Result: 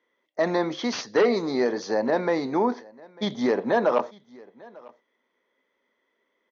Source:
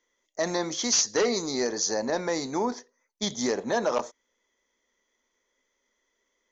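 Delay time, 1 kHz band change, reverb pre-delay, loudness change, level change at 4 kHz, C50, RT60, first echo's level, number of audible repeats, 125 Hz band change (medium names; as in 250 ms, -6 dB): 897 ms, +4.5 dB, no reverb, +2.5 dB, -5.5 dB, no reverb, no reverb, -24.0 dB, 1, +3.5 dB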